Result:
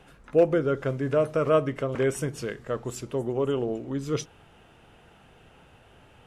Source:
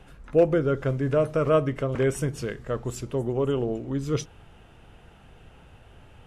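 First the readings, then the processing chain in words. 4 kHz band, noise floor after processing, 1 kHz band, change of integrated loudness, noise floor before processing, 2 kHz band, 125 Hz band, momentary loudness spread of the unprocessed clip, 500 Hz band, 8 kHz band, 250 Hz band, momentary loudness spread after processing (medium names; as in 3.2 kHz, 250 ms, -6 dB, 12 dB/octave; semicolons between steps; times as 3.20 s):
0.0 dB, -56 dBFS, 0.0 dB, -1.0 dB, -52 dBFS, 0.0 dB, -4.0 dB, 9 LU, -0.5 dB, 0.0 dB, -1.5 dB, 10 LU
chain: bass shelf 100 Hz -12 dB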